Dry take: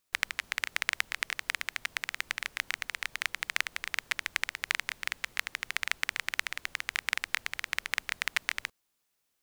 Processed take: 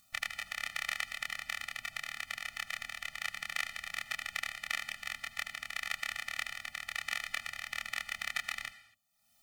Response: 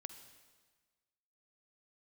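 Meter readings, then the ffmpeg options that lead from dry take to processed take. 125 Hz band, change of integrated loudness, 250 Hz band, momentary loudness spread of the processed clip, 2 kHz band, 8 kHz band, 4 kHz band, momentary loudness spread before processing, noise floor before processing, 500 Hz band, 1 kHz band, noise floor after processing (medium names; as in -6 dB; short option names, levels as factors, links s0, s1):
no reading, -4.5 dB, -4.5 dB, 4 LU, -4.5 dB, -5.0 dB, -4.5 dB, 4 LU, -79 dBFS, -5.0 dB, -3.0 dB, -69 dBFS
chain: -filter_complex "[0:a]acompressor=mode=upward:threshold=0.00355:ratio=2.5,asplit=2[s0][s1];[1:a]atrim=start_sample=2205,afade=t=out:st=0.31:d=0.01,atrim=end_sample=14112,adelay=27[s2];[s1][s2]afir=irnorm=-1:irlink=0,volume=1.33[s3];[s0][s3]amix=inputs=2:normalize=0,afftfilt=real='re*eq(mod(floor(b*sr/1024/290),2),0)':imag='im*eq(mod(floor(b*sr/1024/290),2),0)':win_size=1024:overlap=0.75,volume=0.668"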